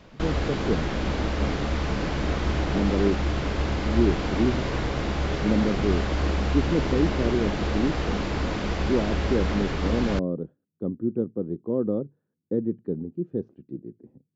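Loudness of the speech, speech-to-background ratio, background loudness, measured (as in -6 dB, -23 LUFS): -28.0 LUFS, -0.5 dB, -27.5 LUFS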